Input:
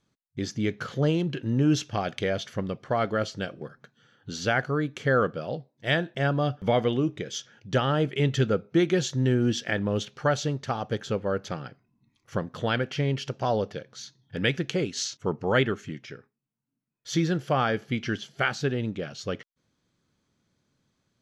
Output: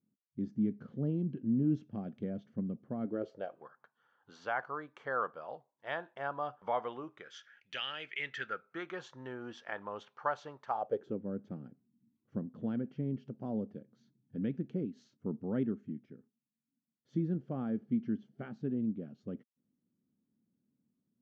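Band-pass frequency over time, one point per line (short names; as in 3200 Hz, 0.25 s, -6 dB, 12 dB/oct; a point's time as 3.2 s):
band-pass, Q 3.4
3.02 s 220 Hz
3.59 s 980 Hz
7.04 s 980 Hz
7.83 s 2800 Hz
9.09 s 1000 Hz
10.68 s 1000 Hz
11.21 s 230 Hz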